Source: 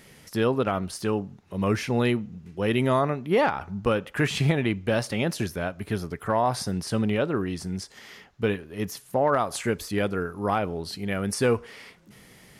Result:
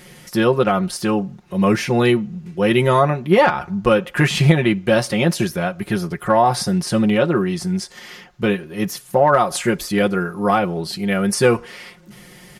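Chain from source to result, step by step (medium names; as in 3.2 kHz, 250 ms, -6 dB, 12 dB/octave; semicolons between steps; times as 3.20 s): comb 5.6 ms, depth 72%; trim +6.5 dB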